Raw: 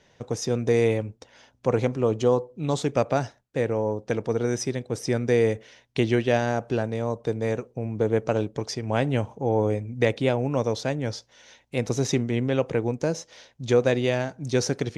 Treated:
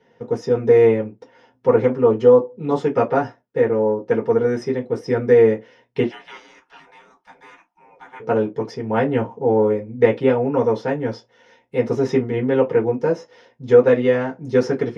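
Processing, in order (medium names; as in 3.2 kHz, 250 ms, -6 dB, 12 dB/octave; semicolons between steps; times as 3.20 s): 6.04–8.20 s: spectral gate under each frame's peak -25 dB weak; dynamic bell 1.4 kHz, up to +6 dB, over -39 dBFS, Q 0.87; reverberation, pre-delay 3 ms, DRR -3.5 dB; trim -14.5 dB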